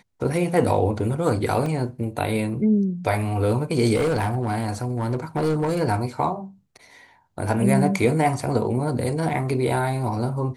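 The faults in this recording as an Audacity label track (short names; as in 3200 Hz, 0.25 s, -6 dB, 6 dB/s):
1.660000	1.660000	gap 2.7 ms
3.950000	5.810000	clipped -18 dBFS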